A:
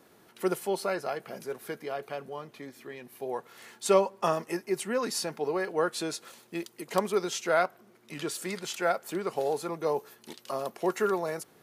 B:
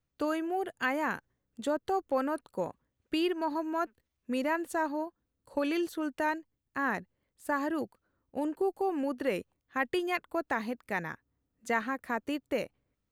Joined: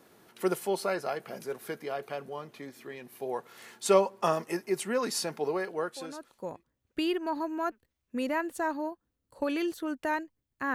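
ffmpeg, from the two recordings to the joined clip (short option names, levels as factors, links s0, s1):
-filter_complex "[0:a]apad=whole_dur=10.74,atrim=end=10.74,atrim=end=6.77,asetpts=PTS-STARTPTS[s0];[1:a]atrim=start=1.62:end=6.89,asetpts=PTS-STARTPTS[s1];[s0][s1]acrossfade=d=1.3:c1=qua:c2=qua"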